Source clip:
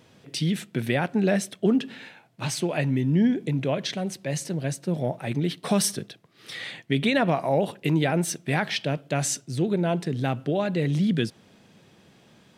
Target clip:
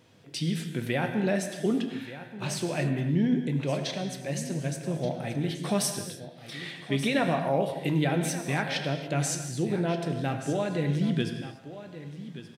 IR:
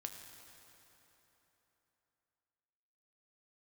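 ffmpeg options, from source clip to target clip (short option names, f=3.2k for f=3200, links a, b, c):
-filter_complex "[0:a]aecho=1:1:1178:0.2[a];[1:a]atrim=start_sample=2205,afade=t=out:st=0.35:d=0.01,atrim=end_sample=15876[b];[a][b]afir=irnorm=-1:irlink=0"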